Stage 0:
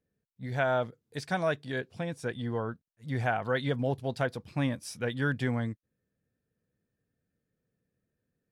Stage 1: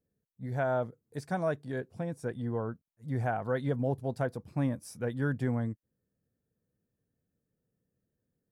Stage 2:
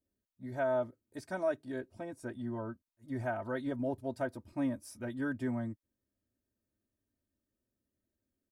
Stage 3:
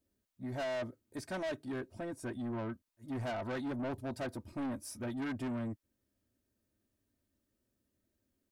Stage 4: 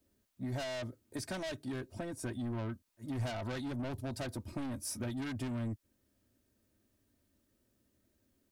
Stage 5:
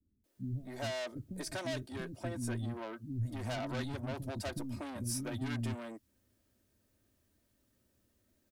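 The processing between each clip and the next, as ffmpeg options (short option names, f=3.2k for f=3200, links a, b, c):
-af "equalizer=f=3.2k:t=o:w=1.9:g=-14.5"
-af "aecho=1:1:3.2:0.93,volume=-5.5dB"
-af "asoftclip=type=tanh:threshold=-39.5dB,volume=5dB"
-filter_complex "[0:a]acrossover=split=140|3000[a][b][c];[b]acompressor=threshold=-45dB:ratio=6[d];[a][d][c]amix=inputs=3:normalize=0,volume=6.5dB"
-filter_complex "[0:a]acrossover=split=290[a][b];[b]adelay=240[c];[a][c]amix=inputs=2:normalize=0,volume=1.5dB"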